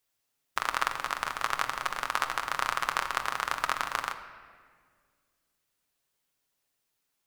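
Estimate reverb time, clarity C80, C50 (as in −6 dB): 1.8 s, 11.0 dB, 10.0 dB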